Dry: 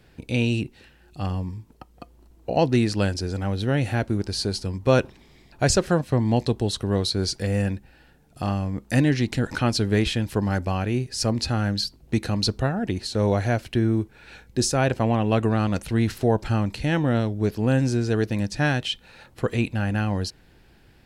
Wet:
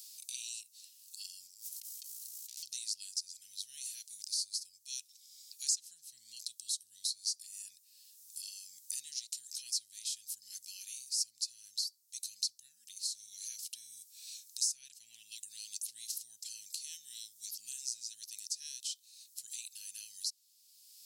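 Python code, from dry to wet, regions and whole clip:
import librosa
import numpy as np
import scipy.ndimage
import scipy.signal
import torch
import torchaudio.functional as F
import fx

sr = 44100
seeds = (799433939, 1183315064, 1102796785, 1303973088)

y = fx.chain(x, sr, fx.tube_stage(drive_db=37.0, bias=0.8),
    fx.env_flatten(amount_pct=100), at=(1.47, 2.63))
y = scipy.signal.sosfilt(scipy.signal.cheby2(4, 70, 1300.0, 'highpass', fs=sr, output='sos'), y)
y = fx.band_squash(y, sr, depth_pct=70)
y = F.gain(torch.from_numpy(y), 3.0).numpy()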